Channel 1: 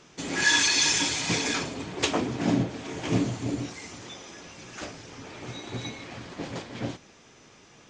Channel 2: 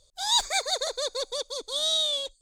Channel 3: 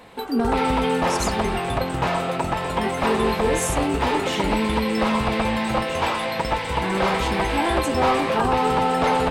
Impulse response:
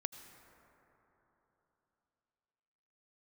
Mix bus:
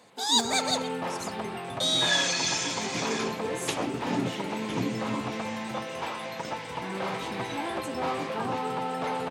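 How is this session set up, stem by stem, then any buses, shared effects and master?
-5.5 dB, 1.65 s, no send, no echo send, dry
-0.5 dB, 0.00 s, muted 0.82–1.8, no send, echo send -16.5 dB, dry
-11.0 dB, 0.00 s, no send, no echo send, dry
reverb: off
echo: echo 0.125 s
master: HPF 110 Hz 24 dB/oct

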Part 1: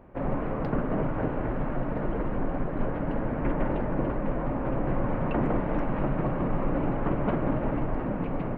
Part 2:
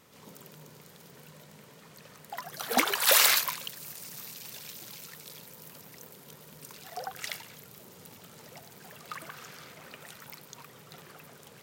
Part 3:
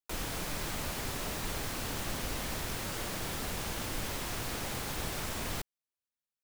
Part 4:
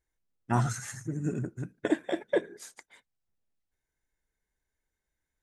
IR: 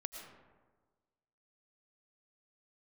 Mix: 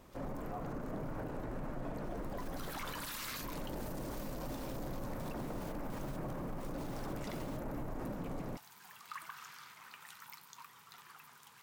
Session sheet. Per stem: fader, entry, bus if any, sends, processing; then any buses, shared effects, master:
-7.5 dB, 0.00 s, no send, dry
-2.0 dB, 0.00 s, no send, flange 0.53 Hz, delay 8 ms, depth 4 ms, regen -64%; resonant low shelf 750 Hz -9 dB, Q 3
-12.0 dB, 1.95 s, no send, step gate ".....x.xxxx..xxx" 171 bpm -12 dB
-3.5 dB, 0.00 s, no send, vowel filter a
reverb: off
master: limiter -33 dBFS, peak gain reduction 20.5 dB

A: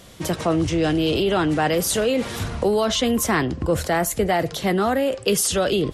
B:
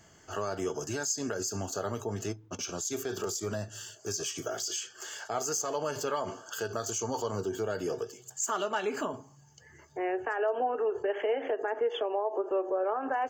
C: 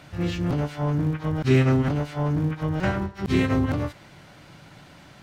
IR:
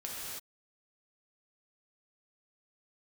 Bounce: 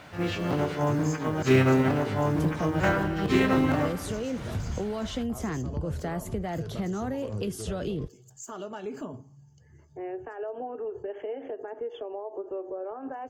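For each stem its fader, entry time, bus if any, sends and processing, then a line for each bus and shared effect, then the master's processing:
-8.5 dB, 2.15 s, bus A, no send, dry
-4.0 dB, 0.00 s, bus A, no send, bell 1500 Hz -6.5 dB 2 oct
+3.0 dB, 0.00 s, no bus, send -8.5 dB, HPF 460 Hz 6 dB/oct; companded quantiser 6-bit
bus A: 0.0 dB, tone controls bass +11 dB, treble +1 dB; compressor 5:1, threshold -28 dBFS, peak gain reduction 9 dB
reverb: on, pre-delay 3 ms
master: high shelf 2800 Hz -8.5 dB

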